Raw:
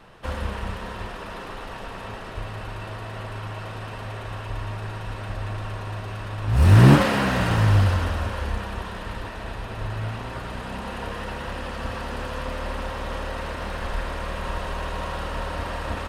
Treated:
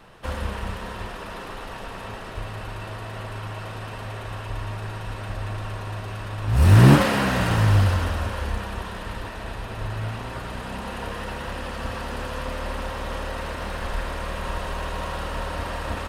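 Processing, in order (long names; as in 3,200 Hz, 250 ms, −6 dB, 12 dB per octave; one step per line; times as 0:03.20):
high-shelf EQ 8,000 Hz +5.5 dB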